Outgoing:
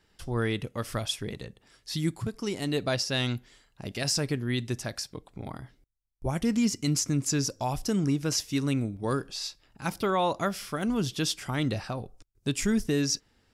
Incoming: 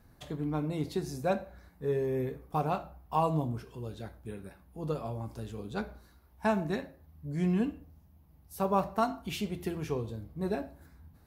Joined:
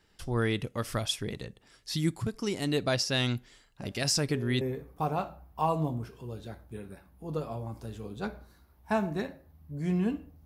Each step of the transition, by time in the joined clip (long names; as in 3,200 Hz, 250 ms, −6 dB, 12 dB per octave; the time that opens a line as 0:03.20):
outgoing
0:03.81: mix in incoming from 0:01.35 0.80 s −10 dB
0:04.61: continue with incoming from 0:02.15